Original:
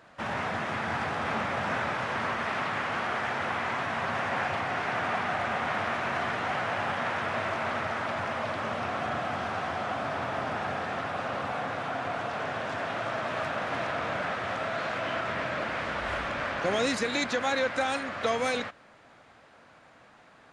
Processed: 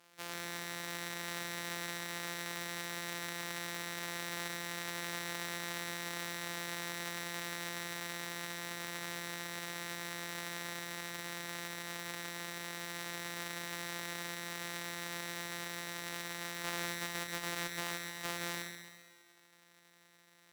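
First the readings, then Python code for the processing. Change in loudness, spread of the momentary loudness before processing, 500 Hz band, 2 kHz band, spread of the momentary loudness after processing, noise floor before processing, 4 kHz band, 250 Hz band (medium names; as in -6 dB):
-9.5 dB, 5 LU, -16.0 dB, -9.5 dB, 3 LU, -56 dBFS, -3.0 dB, -10.5 dB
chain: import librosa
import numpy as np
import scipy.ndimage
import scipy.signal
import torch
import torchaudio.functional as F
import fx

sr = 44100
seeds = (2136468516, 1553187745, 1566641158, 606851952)

y = np.r_[np.sort(x[:len(x) // 256 * 256].reshape(-1, 256), axis=1).ravel(), x[len(x) // 256 * 256:]]
y = fx.highpass(y, sr, hz=1400.0, slope=6)
y = fx.cheby_harmonics(y, sr, harmonics=(2,), levels_db=(-13,), full_scale_db=-12.0)
y = fx.echo_feedback(y, sr, ms=133, feedback_pct=54, wet_db=-7.5)
y = y * librosa.db_to_amplitude(-2.5)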